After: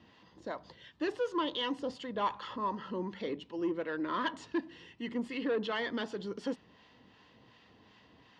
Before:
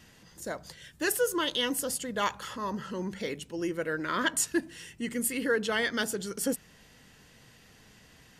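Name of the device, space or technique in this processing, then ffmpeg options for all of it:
guitar amplifier with harmonic tremolo: -filter_complex "[0:a]acrossover=split=740[s0][s1];[s0]aeval=exprs='val(0)*(1-0.5/2+0.5/2*cos(2*PI*2.7*n/s))':c=same[s2];[s1]aeval=exprs='val(0)*(1-0.5/2-0.5/2*cos(2*PI*2.7*n/s))':c=same[s3];[s2][s3]amix=inputs=2:normalize=0,asoftclip=type=tanh:threshold=0.0501,highpass=96,equalizer=f=150:t=q:w=4:g=-8,equalizer=f=300:t=q:w=4:g=4,equalizer=f=1000:t=q:w=4:g=7,equalizer=f=1500:t=q:w=4:g=-6,equalizer=f=2300:t=q:w=4:g=-5,lowpass=f=4000:w=0.5412,lowpass=f=4000:w=1.3066"

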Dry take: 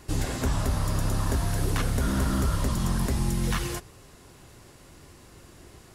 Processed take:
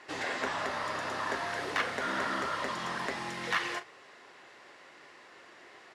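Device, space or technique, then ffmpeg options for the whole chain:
megaphone: -filter_complex "[0:a]highpass=560,lowpass=3600,equalizer=f=1900:t=o:w=0.4:g=6.5,asoftclip=type=hard:threshold=0.0708,asplit=2[s0][s1];[s1]adelay=39,volume=0.237[s2];[s0][s2]amix=inputs=2:normalize=0,volume=1.26"

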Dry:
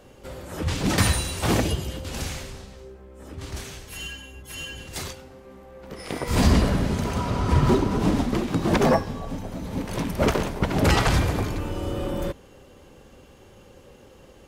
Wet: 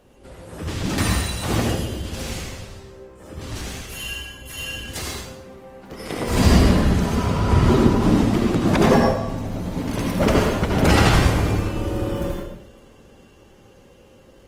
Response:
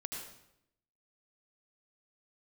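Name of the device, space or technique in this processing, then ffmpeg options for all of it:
speakerphone in a meeting room: -filter_complex "[1:a]atrim=start_sample=2205[s0];[0:a][s0]afir=irnorm=-1:irlink=0,dynaudnorm=f=340:g=17:m=3.76" -ar 48000 -c:a libopus -b:a 24k

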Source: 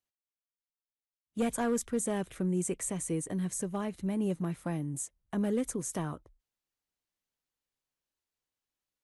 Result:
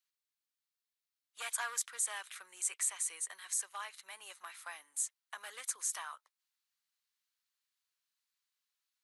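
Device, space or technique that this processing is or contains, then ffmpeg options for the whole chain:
headphones lying on a table: -af "highpass=f=1100:w=0.5412,highpass=f=1100:w=1.3066,equalizer=f=4200:t=o:w=0.43:g=4.5,volume=1.33"

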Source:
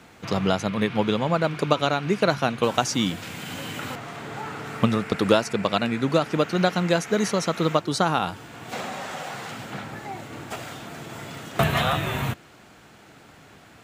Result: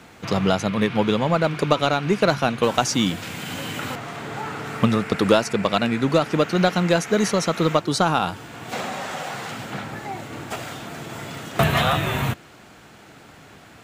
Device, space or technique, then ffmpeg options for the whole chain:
parallel distortion: -filter_complex "[0:a]asplit=2[s0][s1];[s1]asoftclip=type=hard:threshold=0.126,volume=0.473[s2];[s0][s2]amix=inputs=2:normalize=0"

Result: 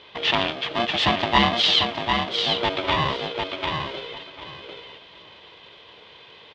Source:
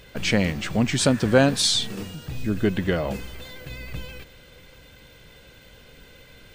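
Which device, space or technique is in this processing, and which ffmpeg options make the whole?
ring modulator pedal into a guitar cabinet: -filter_complex "[0:a]asettb=1/sr,asplit=3[s0][s1][s2];[s0]atrim=end=2.614[s3];[s1]atrim=start=2.61:end=3.32,asetpts=PTS-STARTPTS,afade=t=in:d=0.004:c=qsin,afade=t=out:st=0.706:d=0.004:c=qsin,aecho=1:1:1.7:0.97,atrim=end_sample=31311[s4];[s2]atrim=start=3.316[s5];[s3][s4]acrossfade=d=0.004:c1=hsin:c2=qsin[s6];[s6][s5]acrossfade=d=0.004:c1=qsin:c2=hsin,lowshelf=f=200:g=-9.5,aecho=1:1:746|1492|2238:0.562|0.107|0.0203,aeval=exprs='val(0)*sgn(sin(2*PI*470*n/s))':c=same,highpass=100,equalizer=f=250:t=q:w=4:g=-6,equalizer=f=440:t=q:w=4:g=5,equalizer=f=1500:t=q:w=4:g=-4,equalizer=f=3300:t=q:w=4:g=9,lowpass=f=4000:w=0.5412,lowpass=f=4000:w=1.3066,volume=1.19"

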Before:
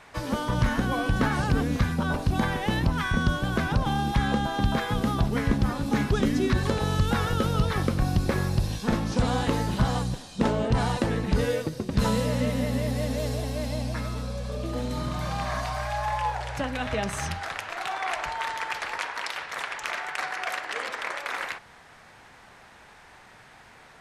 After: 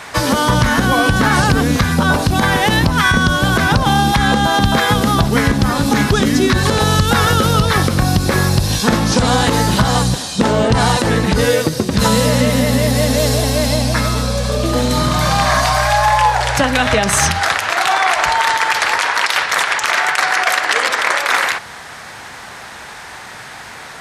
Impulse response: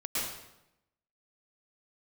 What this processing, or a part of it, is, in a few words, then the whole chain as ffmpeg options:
mastering chain: -af "highpass=51,equalizer=f=2600:t=o:w=0.86:g=-3.5,acompressor=threshold=0.0447:ratio=2.5,tiltshelf=f=1200:g=-4,alimiter=level_in=10:limit=0.891:release=50:level=0:latency=1,volume=0.891"

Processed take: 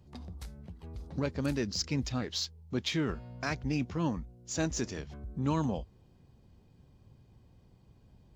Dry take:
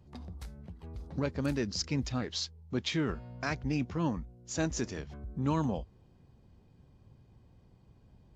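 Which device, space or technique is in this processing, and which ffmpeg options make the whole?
exciter from parts: -filter_complex "[0:a]asplit=2[s0][s1];[s1]highpass=2100,asoftclip=type=tanh:threshold=0.0119,volume=0.398[s2];[s0][s2]amix=inputs=2:normalize=0"

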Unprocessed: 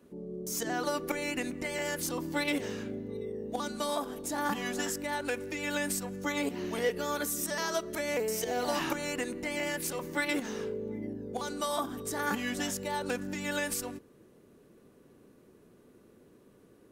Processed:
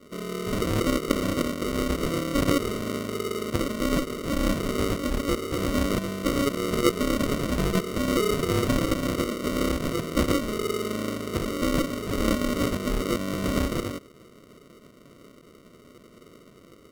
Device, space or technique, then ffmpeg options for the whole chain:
crushed at another speed: -af "asetrate=55125,aresample=44100,acrusher=samples=42:mix=1:aa=0.000001,asetrate=35280,aresample=44100,volume=2.51"

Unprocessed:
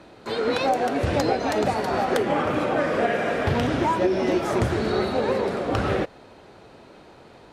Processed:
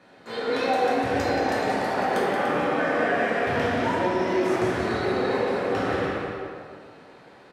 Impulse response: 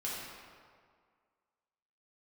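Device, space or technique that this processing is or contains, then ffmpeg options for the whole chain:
stadium PA: -filter_complex "[0:a]highpass=f=130:p=1,equalizer=f=1800:t=o:w=0.31:g=6.5,aecho=1:1:177.8|291.5:0.355|0.316[s0];[1:a]atrim=start_sample=2205[s1];[s0][s1]afir=irnorm=-1:irlink=0,volume=0.562"

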